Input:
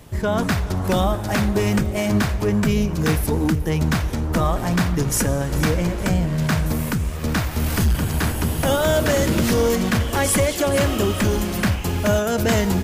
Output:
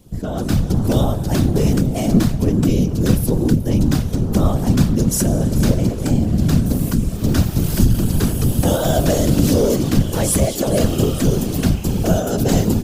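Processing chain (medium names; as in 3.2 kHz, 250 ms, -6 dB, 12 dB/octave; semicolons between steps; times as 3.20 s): graphic EQ 125/1000/2000 Hz +6/-7/-11 dB; level rider; whisper effect; trim -4 dB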